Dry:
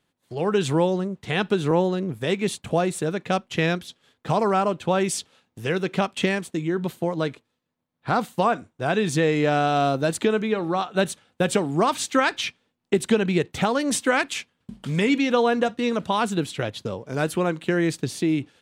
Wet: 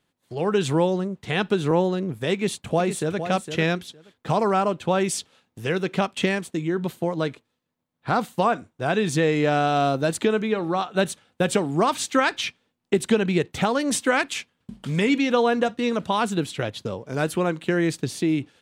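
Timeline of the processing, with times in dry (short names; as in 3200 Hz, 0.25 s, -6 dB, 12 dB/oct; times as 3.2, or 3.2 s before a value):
2.33–3.2 echo throw 0.46 s, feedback 15%, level -9 dB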